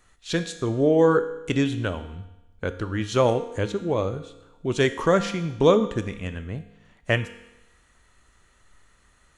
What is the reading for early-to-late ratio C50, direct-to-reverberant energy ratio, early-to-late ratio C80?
12.0 dB, 10.0 dB, 14.0 dB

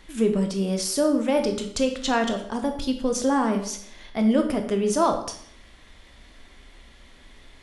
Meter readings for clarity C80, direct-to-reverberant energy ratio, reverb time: 12.0 dB, 5.0 dB, 0.65 s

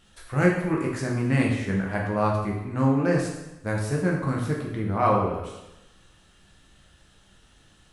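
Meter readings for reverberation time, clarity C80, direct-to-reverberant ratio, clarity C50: 0.95 s, 6.0 dB, -2.5 dB, 3.5 dB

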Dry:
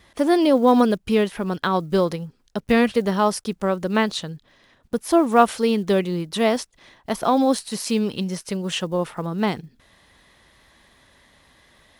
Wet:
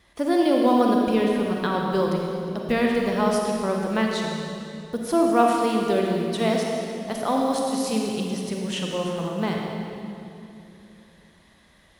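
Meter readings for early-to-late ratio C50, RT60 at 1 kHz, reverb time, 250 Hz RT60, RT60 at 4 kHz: 0.0 dB, 2.6 s, 2.8 s, 3.5 s, 2.2 s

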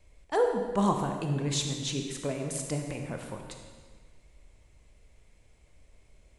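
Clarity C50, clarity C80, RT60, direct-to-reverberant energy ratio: 4.5 dB, 5.5 dB, 1.6 s, 3.0 dB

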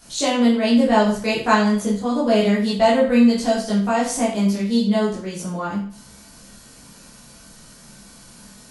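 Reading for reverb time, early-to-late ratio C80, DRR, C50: 0.50 s, 9.0 dB, -8.5 dB, 5.0 dB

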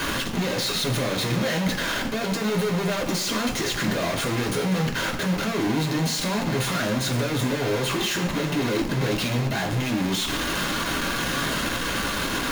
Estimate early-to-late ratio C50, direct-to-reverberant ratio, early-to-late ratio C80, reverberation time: 9.0 dB, -0.5 dB, 11.0 dB, 1.1 s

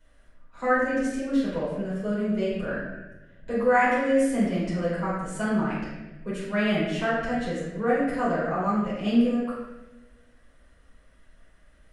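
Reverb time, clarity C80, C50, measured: 1.1 s, 2.5 dB, 0.0 dB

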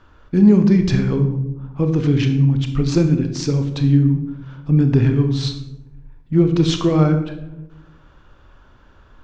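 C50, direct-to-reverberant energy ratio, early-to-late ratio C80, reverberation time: 8.5 dB, 6.0 dB, 11.5 dB, 0.95 s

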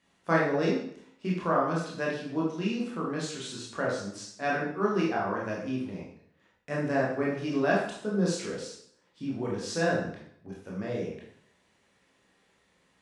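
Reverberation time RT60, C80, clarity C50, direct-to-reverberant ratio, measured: 0.65 s, 6.5 dB, 3.0 dB, -4.5 dB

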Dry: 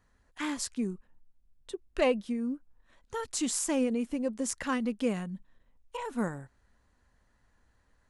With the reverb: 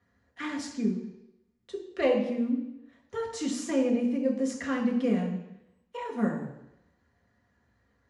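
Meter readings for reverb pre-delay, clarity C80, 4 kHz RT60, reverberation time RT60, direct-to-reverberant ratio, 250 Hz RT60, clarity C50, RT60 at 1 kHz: 3 ms, 9.5 dB, 0.90 s, 0.85 s, -1.0 dB, 0.80 s, 7.0 dB, 0.85 s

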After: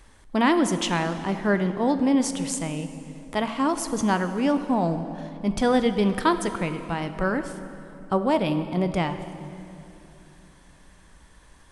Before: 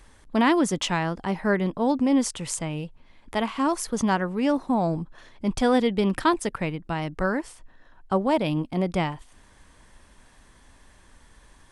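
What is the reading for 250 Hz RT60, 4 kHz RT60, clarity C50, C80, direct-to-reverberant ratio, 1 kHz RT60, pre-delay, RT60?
3.7 s, 2.2 s, 10.0 dB, 11.0 dB, 9.0 dB, 2.7 s, 8 ms, 3.0 s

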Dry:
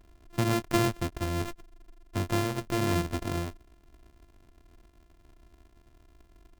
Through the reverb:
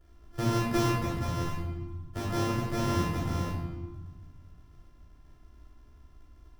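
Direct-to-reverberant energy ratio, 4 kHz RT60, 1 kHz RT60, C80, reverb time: -5.5 dB, 0.85 s, 1.3 s, 3.5 dB, 1.3 s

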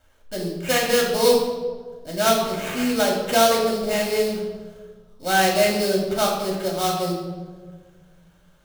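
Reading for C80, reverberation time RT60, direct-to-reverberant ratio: 6.0 dB, 1.6 s, -2.5 dB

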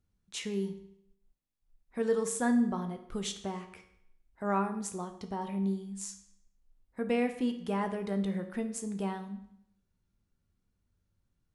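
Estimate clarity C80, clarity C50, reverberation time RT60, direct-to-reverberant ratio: 13.5 dB, 10.5 dB, 0.70 s, 6.5 dB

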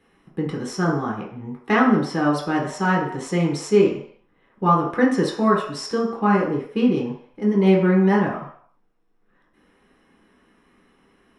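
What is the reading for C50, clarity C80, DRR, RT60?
5.0 dB, 8.5 dB, -3.5 dB, 0.60 s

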